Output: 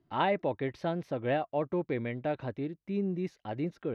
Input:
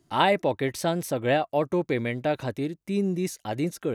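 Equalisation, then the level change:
high-frequency loss of the air 300 metres
−5.5 dB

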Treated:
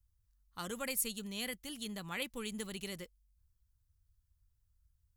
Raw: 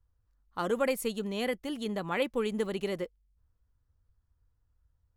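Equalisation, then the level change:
guitar amp tone stack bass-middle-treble 5-5-5
low-shelf EQ 330 Hz +10 dB
high-shelf EQ 4,300 Hz +11 dB
+2.0 dB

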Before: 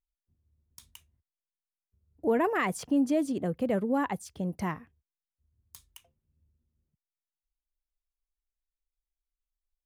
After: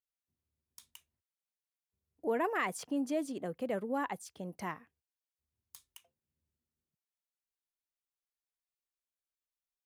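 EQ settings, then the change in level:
high-pass filter 430 Hz 6 dB per octave
−3.5 dB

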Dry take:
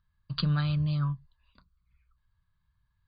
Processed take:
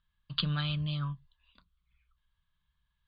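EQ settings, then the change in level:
low-pass with resonance 3,300 Hz, resonance Q 4.1
parametric band 100 Hz −14 dB 0.43 octaves
−3.5 dB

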